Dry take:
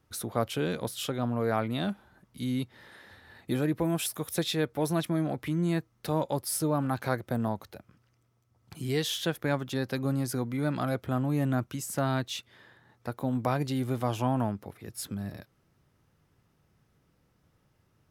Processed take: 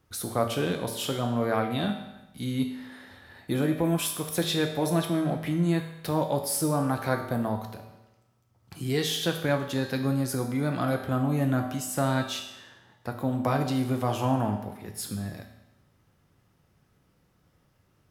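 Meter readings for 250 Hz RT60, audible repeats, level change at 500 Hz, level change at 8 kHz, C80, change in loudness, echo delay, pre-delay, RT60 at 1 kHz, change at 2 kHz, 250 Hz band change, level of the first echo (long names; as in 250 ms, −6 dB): 1.0 s, no echo audible, +2.5 dB, +3.0 dB, 9.5 dB, +2.5 dB, no echo audible, 5 ms, 1.0 s, +3.0 dB, +2.5 dB, no echo audible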